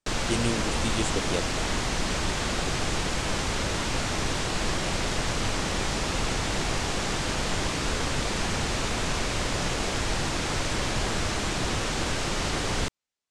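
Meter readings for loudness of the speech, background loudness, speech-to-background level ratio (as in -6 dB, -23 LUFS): -32.0 LUFS, -28.0 LUFS, -4.0 dB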